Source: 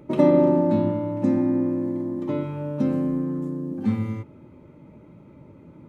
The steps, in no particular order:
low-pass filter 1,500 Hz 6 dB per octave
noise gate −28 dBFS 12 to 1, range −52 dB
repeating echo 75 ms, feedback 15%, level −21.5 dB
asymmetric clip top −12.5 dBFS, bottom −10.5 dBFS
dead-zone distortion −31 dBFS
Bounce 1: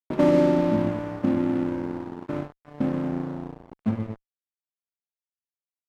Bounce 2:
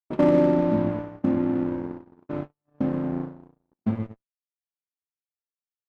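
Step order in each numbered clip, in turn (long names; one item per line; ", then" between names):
low-pass filter, then noise gate, then repeating echo, then dead-zone distortion, then asymmetric clip
repeating echo, then dead-zone distortion, then noise gate, then low-pass filter, then asymmetric clip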